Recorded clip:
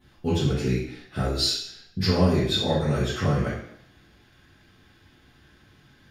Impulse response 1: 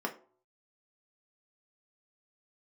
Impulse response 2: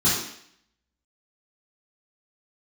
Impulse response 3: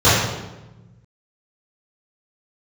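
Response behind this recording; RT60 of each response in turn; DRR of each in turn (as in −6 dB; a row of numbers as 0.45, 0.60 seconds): 2; 0.50, 0.65, 1.1 seconds; 1.0, −12.0, −15.5 decibels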